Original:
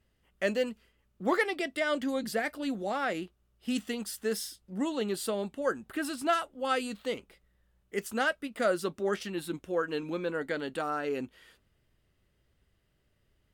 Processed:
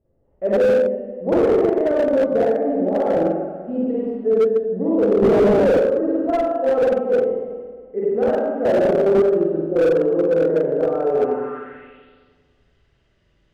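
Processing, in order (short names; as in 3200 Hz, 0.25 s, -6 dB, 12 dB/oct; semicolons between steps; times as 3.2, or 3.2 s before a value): spring tank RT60 1.8 s, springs 43/49 ms, chirp 35 ms, DRR -9 dB; 5.22–5.79 sample leveller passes 3; dynamic EQ 430 Hz, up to +5 dB, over -37 dBFS, Q 4; low-pass sweep 560 Hz -> 6100 Hz, 11.11–12.39; slew limiter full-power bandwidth 110 Hz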